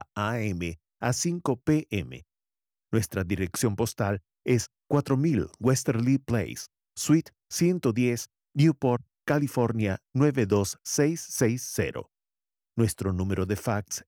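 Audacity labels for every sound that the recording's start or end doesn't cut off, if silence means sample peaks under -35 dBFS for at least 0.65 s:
2.930000	12.020000	sound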